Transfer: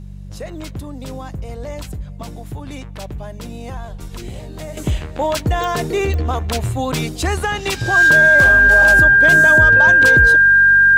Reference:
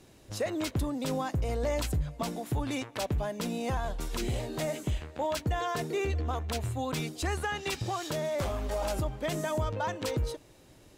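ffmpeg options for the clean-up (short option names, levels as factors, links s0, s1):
-af "adeclick=t=4,bandreject=f=48.1:t=h:w=4,bandreject=f=96.2:t=h:w=4,bandreject=f=144.3:t=h:w=4,bandreject=f=192.4:t=h:w=4,bandreject=f=1600:w=30,asetnsamples=n=441:p=0,asendcmd='4.77 volume volume -12dB',volume=1"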